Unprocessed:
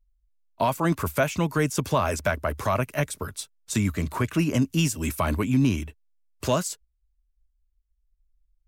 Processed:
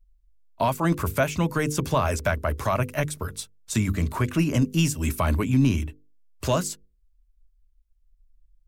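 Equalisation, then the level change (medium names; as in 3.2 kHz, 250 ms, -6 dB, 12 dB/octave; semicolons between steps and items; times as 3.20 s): bass shelf 81 Hz +10 dB; hum notches 50/100/150/200/250/300/350/400/450/500 Hz; 0.0 dB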